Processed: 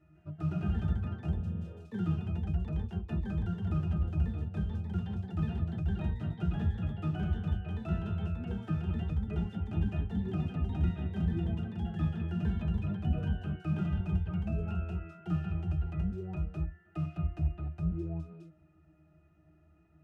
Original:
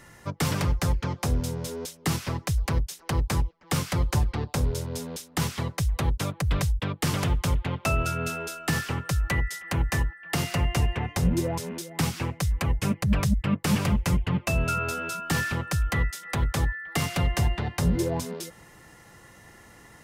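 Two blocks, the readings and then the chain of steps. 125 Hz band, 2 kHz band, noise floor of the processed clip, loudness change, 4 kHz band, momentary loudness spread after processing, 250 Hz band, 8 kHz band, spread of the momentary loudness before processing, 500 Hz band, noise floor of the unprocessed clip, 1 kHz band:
-5.0 dB, -19.5 dB, -64 dBFS, -7.0 dB, -21.0 dB, 5 LU, -5.0 dB, under -35 dB, 5 LU, -12.5 dB, -52 dBFS, -16.0 dB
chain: octave resonator D#, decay 0.2 s; echoes that change speed 0.153 s, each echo +2 st, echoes 3

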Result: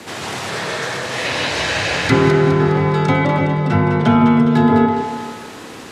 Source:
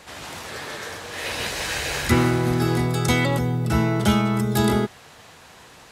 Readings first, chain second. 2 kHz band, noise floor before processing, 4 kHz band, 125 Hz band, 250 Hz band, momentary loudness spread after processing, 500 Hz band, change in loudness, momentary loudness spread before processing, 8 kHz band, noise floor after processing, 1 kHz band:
+6.5 dB, -48 dBFS, +5.0 dB, +5.0 dB, +7.5 dB, 13 LU, +8.5 dB, +6.5 dB, 13 LU, +0.5 dB, -34 dBFS, +9.0 dB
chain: frequency shift +29 Hz; in parallel at +0.5 dB: compressor, threshold -29 dBFS, peak gain reduction 15.5 dB; on the sum: band noise 170–500 Hz -44 dBFS; treble ducked by the level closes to 1800 Hz, closed at -13.5 dBFS; on a send: split-band echo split 1300 Hz, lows 0.157 s, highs 0.206 s, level -7 dB; on the sum: spring tank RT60 1.2 s, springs 30 ms, chirp 40 ms, DRR 6 dB; gain +2.5 dB

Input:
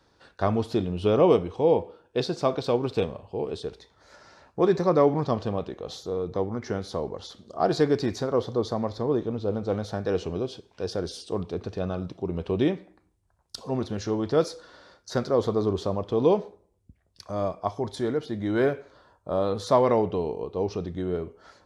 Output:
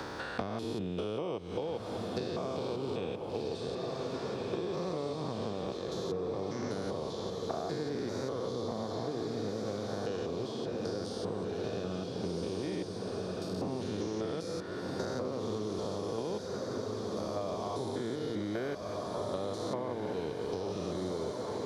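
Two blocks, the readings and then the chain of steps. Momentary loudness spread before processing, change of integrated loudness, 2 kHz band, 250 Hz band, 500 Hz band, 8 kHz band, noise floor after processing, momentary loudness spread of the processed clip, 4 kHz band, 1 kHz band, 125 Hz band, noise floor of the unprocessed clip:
11 LU, -9.5 dB, -5.5 dB, -8.0 dB, -9.5 dB, -3.0 dB, -40 dBFS, 2 LU, -4.0 dB, -9.5 dB, -8.5 dB, -68 dBFS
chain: stepped spectrum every 0.2 s; HPF 120 Hz 6 dB/oct; high shelf 3900 Hz +6 dB; compressor, threshold -31 dBFS, peak gain reduction 13 dB; diffused feedback echo 1.525 s, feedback 43%, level -5 dB; three-band squash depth 100%; gain -2 dB

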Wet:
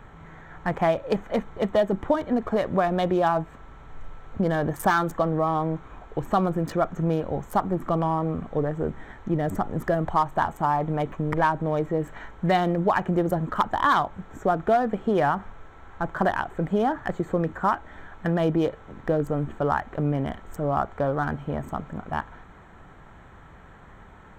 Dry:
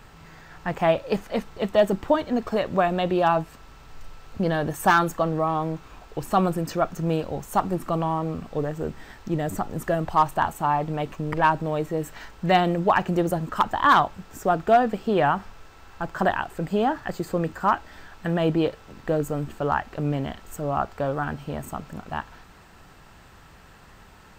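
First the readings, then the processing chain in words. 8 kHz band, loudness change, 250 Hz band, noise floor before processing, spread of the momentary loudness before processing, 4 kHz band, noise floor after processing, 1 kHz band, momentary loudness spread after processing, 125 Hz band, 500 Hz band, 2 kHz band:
n/a, -1.0 dB, +0.5 dB, -50 dBFS, 13 LU, -5.0 dB, -48 dBFS, -2.0 dB, 9 LU, +0.5 dB, -0.5 dB, -2.5 dB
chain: Wiener smoothing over 9 samples; notch 2700 Hz, Q 6.4; compressor 2.5:1, threshold -22 dBFS, peak gain reduction 7 dB; gain +2.5 dB

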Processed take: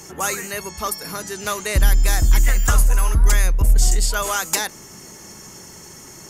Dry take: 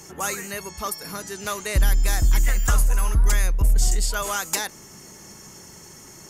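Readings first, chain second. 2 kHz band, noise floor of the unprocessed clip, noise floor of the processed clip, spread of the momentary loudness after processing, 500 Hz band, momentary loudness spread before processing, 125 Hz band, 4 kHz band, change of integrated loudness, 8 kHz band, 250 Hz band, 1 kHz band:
+4.0 dB, -45 dBFS, -41 dBFS, 20 LU, +4.0 dB, 21 LU, +3.5 dB, +4.0 dB, +3.5 dB, +4.0 dB, +3.0 dB, +4.0 dB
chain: notches 50/100/150/200 Hz; gain +4 dB

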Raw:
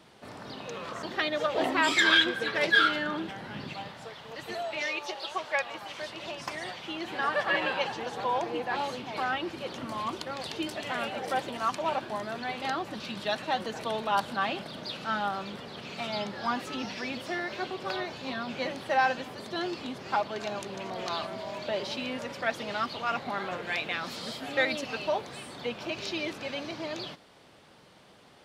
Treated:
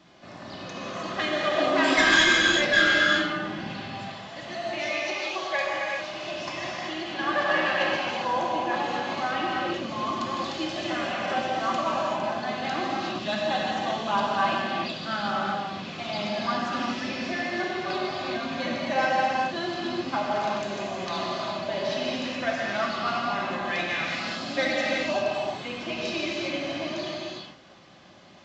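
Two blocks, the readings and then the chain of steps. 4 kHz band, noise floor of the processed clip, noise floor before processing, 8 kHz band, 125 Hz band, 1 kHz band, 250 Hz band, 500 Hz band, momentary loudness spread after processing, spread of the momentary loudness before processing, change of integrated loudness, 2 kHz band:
+4.0 dB, -42 dBFS, -56 dBFS, +6.0 dB, +5.0 dB, +4.0 dB, +5.5 dB, +4.5 dB, 11 LU, 12 LU, +4.5 dB, +4.5 dB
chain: tracing distortion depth 0.058 ms; notch 450 Hz, Q 12; notch comb 460 Hz; non-linear reverb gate 0.43 s flat, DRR -4.5 dB; µ-law 128 kbps 16000 Hz

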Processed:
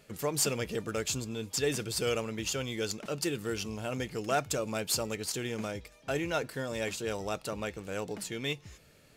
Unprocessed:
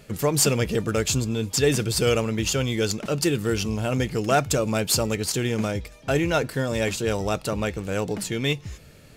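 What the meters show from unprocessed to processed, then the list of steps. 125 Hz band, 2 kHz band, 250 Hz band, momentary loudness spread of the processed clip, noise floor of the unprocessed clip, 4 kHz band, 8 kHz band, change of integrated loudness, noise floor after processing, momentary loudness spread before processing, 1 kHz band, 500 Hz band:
-13.5 dB, -8.0 dB, -11.0 dB, 7 LU, -48 dBFS, -8.0 dB, -8.0 dB, -9.5 dB, -60 dBFS, 6 LU, -8.5 dB, -9.0 dB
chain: low shelf 200 Hz -8 dB; gain -8 dB

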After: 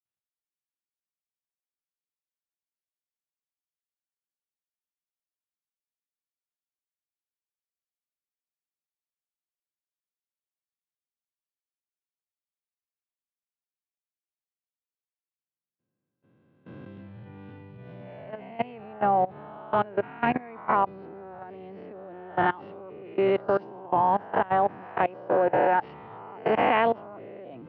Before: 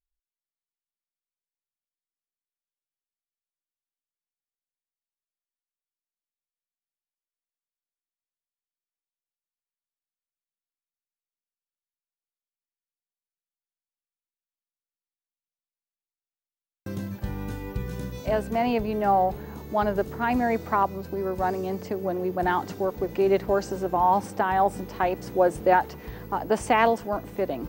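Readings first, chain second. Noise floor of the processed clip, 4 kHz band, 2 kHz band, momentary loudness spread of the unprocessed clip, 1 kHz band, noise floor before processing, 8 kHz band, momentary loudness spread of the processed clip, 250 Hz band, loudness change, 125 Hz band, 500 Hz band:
under -85 dBFS, -3.0 dB, -1.0 dB, 11 LU, -1.0 dB, under -85 dBFS, under -30 dB, 21 LU, -5.0 dB, -0.5 dB, -6.5 dB, -2.5 dB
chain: spectral swells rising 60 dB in 1.22 s; level quantiser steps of 21 dB; elliptic band-pass 110–3000 Hz, stop band 40 dB

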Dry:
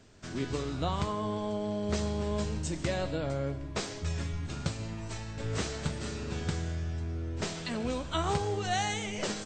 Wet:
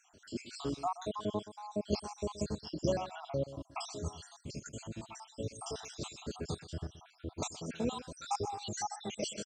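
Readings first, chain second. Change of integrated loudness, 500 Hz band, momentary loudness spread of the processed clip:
-6.0 dB, -4.0 dB, 9 LU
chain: random spectral dropouts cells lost 73%; HPF 190 Hz 6 dB/oct; bell 1900 Hz -14 dB 0.67 oct; echo 0.125 s -15 dB; gain +3.5 dB

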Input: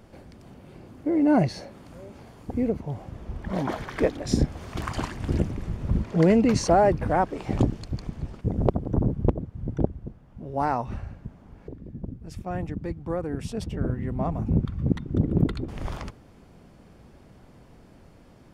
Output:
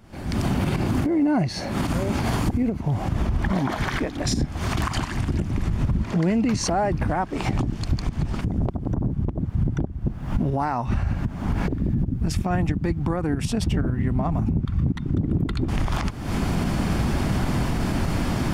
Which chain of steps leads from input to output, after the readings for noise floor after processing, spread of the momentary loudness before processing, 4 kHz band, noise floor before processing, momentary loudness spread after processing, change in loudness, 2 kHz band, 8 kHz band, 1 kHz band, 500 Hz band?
-34 dBFS, 20 LU, +8.0 dB, -52 dBFS, 4 LU, +1.5 dB, +6.5 dB, +7.0 dB, +1.0 dB, -2.5 dB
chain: recorder AGC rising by 72 dB/s; bell 490 Hz -9 dB 0.72 oct; limiter -14 dBFS, peak gain reduction 10 dB

